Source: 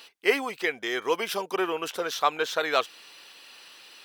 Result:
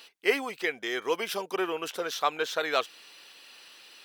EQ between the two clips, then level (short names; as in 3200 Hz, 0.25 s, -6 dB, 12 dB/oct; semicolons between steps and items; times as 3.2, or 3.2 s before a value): bell 65 Hz -13 dB 0.62 oct; bell 1000 Hz -2 dB; -2.0 dB